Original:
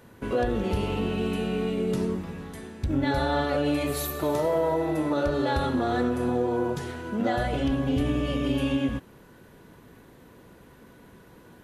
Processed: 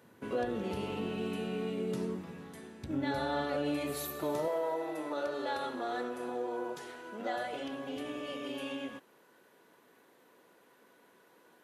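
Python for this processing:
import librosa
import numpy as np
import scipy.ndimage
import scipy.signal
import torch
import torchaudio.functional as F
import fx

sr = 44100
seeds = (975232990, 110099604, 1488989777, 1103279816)

y = fx.highpass(x, sr, hz=fx.steps((0.0, 150.0), (4.48, 410.0)), slope=12)
y = F.gain(torch.from_numpy(y), -7.5).numpy()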